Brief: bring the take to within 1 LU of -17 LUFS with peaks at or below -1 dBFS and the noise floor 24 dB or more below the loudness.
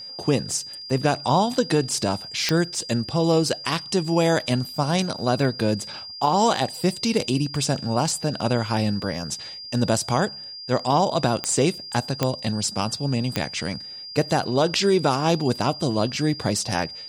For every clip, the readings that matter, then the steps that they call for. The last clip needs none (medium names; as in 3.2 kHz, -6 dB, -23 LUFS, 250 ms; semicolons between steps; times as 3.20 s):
clicks found 4; steady tone 4.8 kHz; tone level -35 dBFS; loudness -23.5 LUFS; peak level -6.0 dBFS; loudness target -17.0 LUFS
-> de-click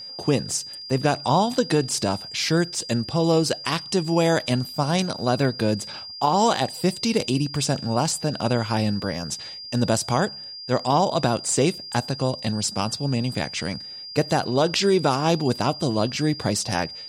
clicks found 0; steady tone 4.8 kHz; tone level -35 dBFS
-> band-stop 4.8 kHz, Q 30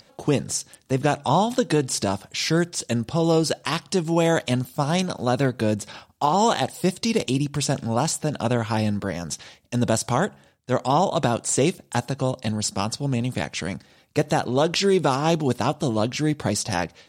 steady tone not found; loudness -23.5 LUFS; peak level -8.0 dBFS; loudness target -17.0 LUFS
-> trim +6.5 dB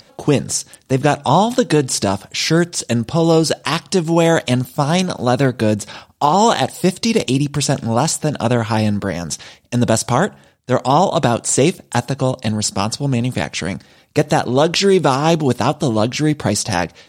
loudness -17.0 LUFS; peak level -1.5 dBFS; noise floor -51 dBFS